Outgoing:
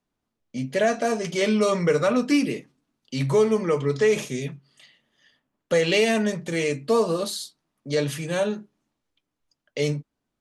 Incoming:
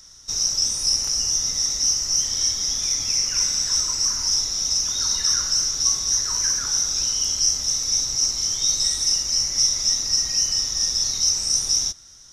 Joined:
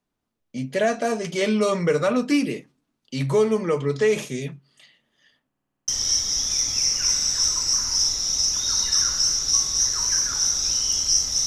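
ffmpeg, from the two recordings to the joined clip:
ffmpeg -i cue0.wav -i cue1.wav -filter_complex "[0:a]apad=whole_dur=11.46,atrim=end=11.46,asplit=8[link_01][link_02][link_03][link_04][link_05][link_06][link_07][link_08];[link_01]atrim=end=5.532[link_09];[link_02]atrim=start=5.478:end=5.532[link_10];[link_03]atrim=start=5.478:end=5.532[link_11];[link_04]atrim=start=5.478:end=5.532[link_12];[link_05]atrim=start=5.478:end=5.532[link_13];[link_06]atrim=start=5.478:end=5.532[link_14];[link_07]atrim=start=5.478:end=5.532[link_15];[link_08]atrim=start=5.478:end=5.532[link_16];[1:a]atrim=start=2.198:end=7.78[link_17];[link_09][link_10]acrossfade=duration=0.004:curve1=hsin:curve2=hsin[link_18];[link_18][link_11]acrossfade=duration=0.004:curve1=hsin:curve2=hsin[link_19];[link_19][link_12]acrossfade=duration=0.004:curve1=hsin:curve2=hsin[link_20];[link_20][link_13]acrossfade=duration=0.004:curve1=hsin:curve2=hsin[link_21];[link_21][link_14]acrossfade=duration=0.004:curve1=hsin:curve2=hsin[link_22];[link_22][link_15]acrossfade=duration=0.004:curve1=hsin:curve2=hsin[link_23];[link_23][link_16]acrossfade=duration=0.004:curve1=hsin:curve2=hsin[link_24];[link_24][link_17]acrossfade=duration=0.004:curve1=hsin:curve2=hsin" out.wav

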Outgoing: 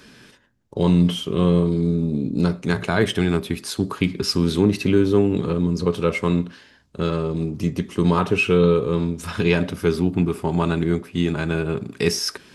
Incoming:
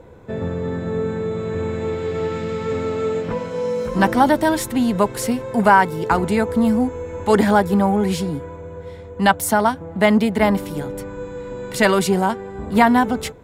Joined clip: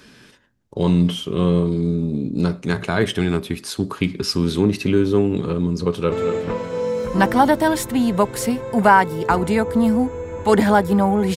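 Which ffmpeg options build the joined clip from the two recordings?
ffmpeg -i cue0.wav -i cue1.wav -filter_complex "[0:a]apad=whole_dur=11.36,atrim=end=11.36,atrim=end=6.122[link_01];[1:a]atrim=start=2.928:end=8.17[link_02];[link_01][link_02]acrossfade=duration=0.004:curve1=hsin:curve2=hsin,asplit=2[link_03][link_04];[link_04]afade=type=in:start_time=5.85:duration=0.01,afade=type=out:start_time=6.12:duration=0.01,aecho=0:1:230|460|690|920|1150|1380:0.354813|0.177407|0.0887033|0.0443517|0.0221758|0.0110879[link_05];[link_03][link_05]amix=inputs=2:normalize=0" out.wav

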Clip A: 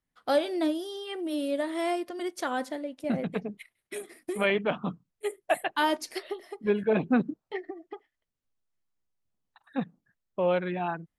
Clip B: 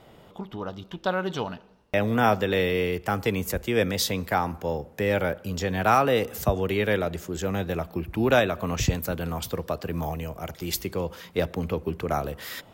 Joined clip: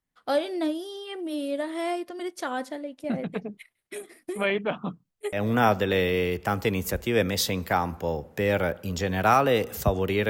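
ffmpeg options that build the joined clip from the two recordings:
ffmpeg -i cue0.wav -i cue1.wav -filter_complex "[0:a]apad=whole_dur=10.29,atrim=end=10.29,atrim=end=5.46,asetpts=PTS-STARTPTS[link_01];[1:a]atrim=start=1.87:end=6.9,asetpts=PTS-STARTPTS[link_02];[link_01][link_02]acrossfade=duration=0.2:curve1=tri:curve2=tri" out.wav

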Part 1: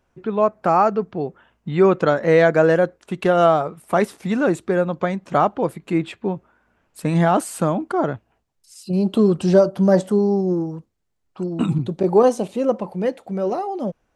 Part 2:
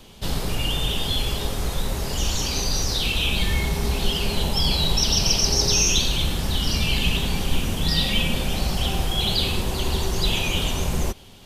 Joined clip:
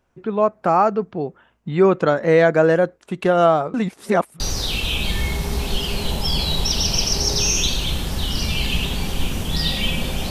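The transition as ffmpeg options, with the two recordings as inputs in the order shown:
ffmpeg -i cue0.wav -i cue1.wav -filter_complex "[0:a]apad=whole_dur=10.3,atrim=end=10.3,asplit=2[link_01][link_02];[link_01]atrim=end=3.742[link_03];[link_02]atrim=start=3.738:end=4.402,asetpts=PTS-STARTPTS,areverse[link_04];[1:a]atrim=start=2.718:end=8.62[link_05];[link_03][link_04]acrossfade=duration=0.004:curve1=hsin:curve2=hsin[link_06];[link_06][link_05]acrossfade=duration=0.004:curve1=hsin:curve2=hsin" out.wav

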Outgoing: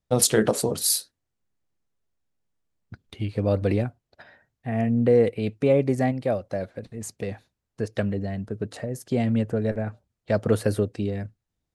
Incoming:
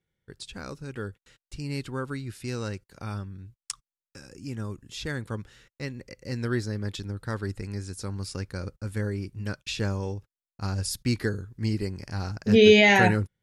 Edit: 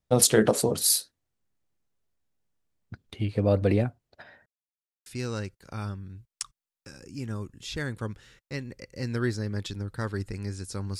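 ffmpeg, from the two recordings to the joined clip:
ffmpeg -i cue0.wav -i cue1.wav -filter_complex "[0:a]apad=whole_dur=10.99,atrim=end=10.99,asplit=2[link_01][link_02];[link_01]atrim=end=4.46,asetpts=PTS-STARTPTS,afade=type=out:start_time=4.456:duration=0.004:curve=hsin[link_03];[link_02]atrim=start=4.46:end=5.06,asetpts=PTS-STARTPTS,volume=0[link_04];[1:a]atrim=start=2.35:end=8.28,asetpts=PTS-STARTPTS,afade=type=in:duration=0.004:curve=hsin[link_05];[link_03][link_04][link_05]concat=n=3:v=0:a=1" out.wav

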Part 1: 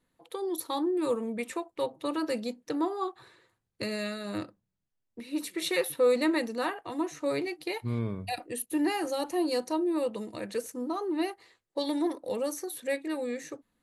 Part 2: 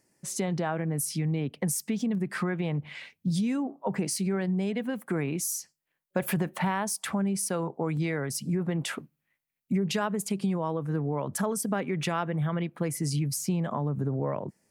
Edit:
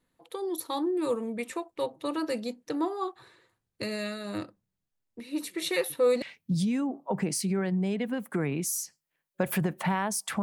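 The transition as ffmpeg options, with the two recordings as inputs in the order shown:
ffmpeg -i cue0.wav -i cue1.wav -filter_complex "[0:a]apad=whole_dur=10.42,atrim=end=10.42,atrim=end=6.222[link_01];[1:a]atrim=start=2.978:end=7.18[link_02];[link_01][link_02]acrossfade=duration=0.004:curve1=hsin:curve2=hsin" out.wav

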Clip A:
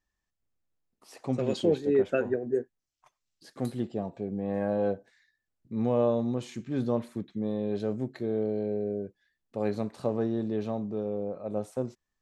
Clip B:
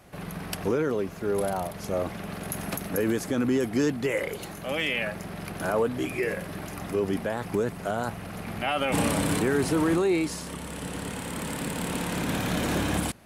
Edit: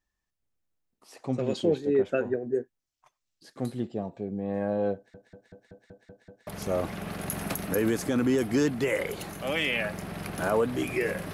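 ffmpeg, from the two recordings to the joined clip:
ffmpeg -i cue0.wav -i cue1.wav -filter_complex "[0:a]apad=whole_dur=11.33,atrim=end=11.33,asplit=8[link_01][link_02][link_03][link_04][link_05][link_06][link_07][link_08];[link_01]atrim=end=5.142[link_09];[link_02]atrim=start=4.948:end=5.142[link_10];[link_03]atrim=start=4.948:end=5.142[link_11];[link_04]atrim=start=4.948:end=5.142[link_12];[link_05]atrim=start=4.948:end=5.142[link_13];[link_06]atrim=start=4.948:end=5.142[link_14];[link_07]atrim=start=4.948:end=5.142[link_15];[link_08]atrim=start=4.948:end=5.142[link_16];[1:a]atrim=start=1.688:end=6.55[link_17];[link_09][link_10]acrossfade=duration=0.004:curve1=hsin:curve2=hsin[link_18];[link_18][link_11]acrossfade=duration=0.004:curve1=hsin:curve2=hsin[link_19];[link_19][link_12]acrossfade=duration=0.004:curve1=hsin:curve2=hsin[link_20];[link_20][link_13]acrossfade=duration=0.004:curve1=hsin:curve2=hsin[link_21];[link_21][link_14]acrossfade=duration=0.004:curve1=hsin:curve2=hsin[link_22];[link_22][link_15]acrossfade=duration=0.004:curve1=hsin:curve2=hsin[link_23];[link_23][link_16]acrossfade=duration=0.004:curve1=hsin:curve2=hsin[link_24];[link_24][link_17]acrossfade=duration=0.004:curve1=hsin:curve2=hsin" out.wav

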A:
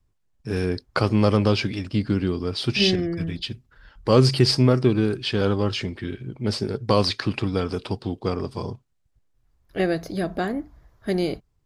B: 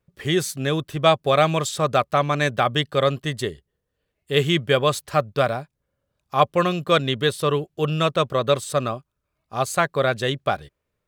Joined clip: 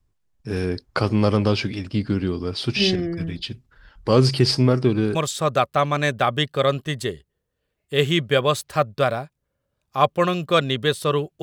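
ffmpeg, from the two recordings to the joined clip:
ffmpeg -i cue0.wav -i cue1.wav -filter_complex "[0:a]apad=whole_dur=11.42,atrim=end=11.42,atrim=end=5.152[link_01];[1:a]atrim=start=1.528:end=7.8[link_02];[link_01][link_02]acrossfade=duration=0.004:curve1=hsin:curve2=hsin" out.wav

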